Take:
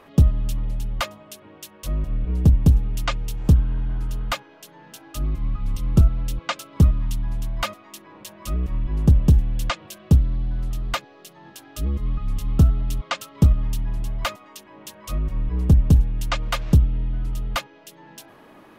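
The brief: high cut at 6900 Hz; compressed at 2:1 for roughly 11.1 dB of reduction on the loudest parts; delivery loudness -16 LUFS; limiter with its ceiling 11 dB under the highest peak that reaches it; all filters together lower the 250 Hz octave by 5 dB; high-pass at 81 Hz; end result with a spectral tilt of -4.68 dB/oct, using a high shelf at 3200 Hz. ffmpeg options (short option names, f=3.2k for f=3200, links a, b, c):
-af "highpass=81,lowpass=6.9k,equalizer=f=250:t=o:g=-8.5,highshelf=f=3.2k:g=5,acompressor=threshold=-34dB:ratio=2,volume=22.5dB,alimiter=limit=-3.5dB:level=0:latency=1"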